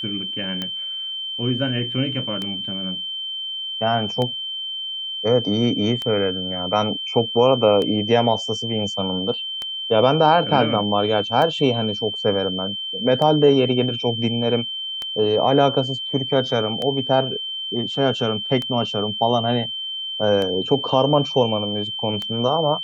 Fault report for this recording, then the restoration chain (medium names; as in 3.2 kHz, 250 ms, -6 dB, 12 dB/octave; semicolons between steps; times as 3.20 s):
tick 33 1/3 rpm -13 dBFS
whine 3.1 kHz -26 dBFS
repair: de-click; band-stop 3.1 kHz, Q 30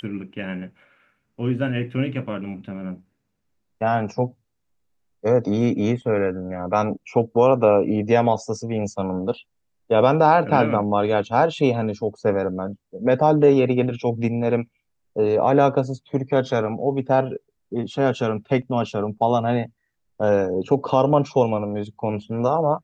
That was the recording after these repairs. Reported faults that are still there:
nothing left